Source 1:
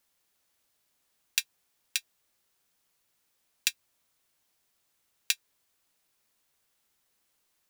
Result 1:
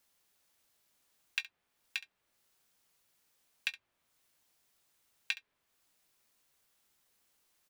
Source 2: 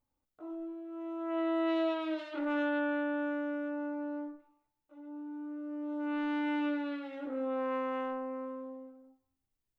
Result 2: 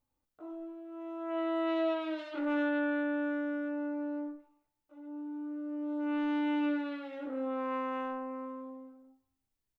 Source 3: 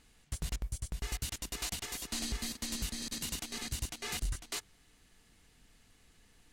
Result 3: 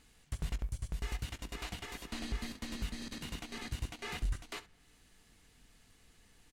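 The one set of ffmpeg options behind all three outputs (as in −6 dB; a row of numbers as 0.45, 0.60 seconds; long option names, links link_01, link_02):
-filter_complex "[0:a]acrossover=split=3200[link_01][link_02];[link_02]acompressor=threshold=-54dB:ratio=6[link_03];[link_01][link_03]amix=inputs=2:normalize=0,aecho=1:1:20|68:0.178|0.141"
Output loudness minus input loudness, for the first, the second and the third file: −7.5, +0.5, −3.5 LU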